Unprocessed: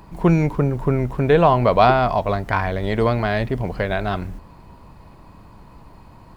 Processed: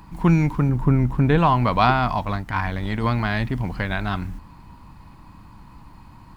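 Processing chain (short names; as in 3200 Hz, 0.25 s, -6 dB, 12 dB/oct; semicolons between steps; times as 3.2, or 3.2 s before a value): 0.69–1.38 tilt shelf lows +3.5 dB; 2.25–3.04 transient shaper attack -9 dB, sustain -5 dB; band shelf 510 Hz -10 dB 1.1 oct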